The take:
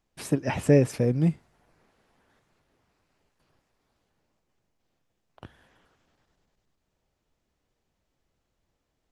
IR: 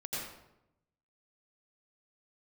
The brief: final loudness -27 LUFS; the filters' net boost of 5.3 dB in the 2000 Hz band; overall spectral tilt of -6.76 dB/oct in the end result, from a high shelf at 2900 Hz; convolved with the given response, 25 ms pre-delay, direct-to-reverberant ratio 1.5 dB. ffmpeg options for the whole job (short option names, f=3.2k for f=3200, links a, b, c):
-filter_complex "[0:a]equalizer=f=2k:t=o:g=5,highshelf=f=2.9k:g=3.5,asplit=2[a][b];[1:a]atrim=start_sample=2205,adelay=25[c];[b][c]afir=irnorm=-1:irlink=0,volume=-4dB[d];[a][d]amix=inputs=2:normalize=0,volume=-5.5dB"